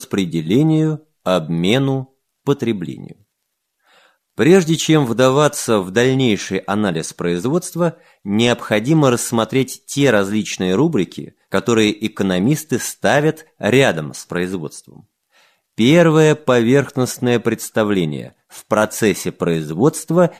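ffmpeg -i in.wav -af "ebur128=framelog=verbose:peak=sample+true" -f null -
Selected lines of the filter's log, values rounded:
Integrated loudness:
  I:         -16.8 LUFS
  Threshold: -27.4 LUFS
Loudness range:
  LRA:         3.4 LU
  Threshold: -37.4 LUFS
  LRA low:   -19.2 LUFS
  LRA high:  -15.8 LUFS
Sample peak:
  Peak:       -1.6 dBFS
True peak:
  Peak:       -1.5 dBFS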